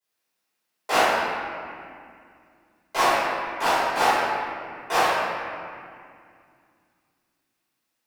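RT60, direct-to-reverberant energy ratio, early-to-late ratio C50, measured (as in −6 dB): 2.3 s, −19.0 dB, −4.5 dB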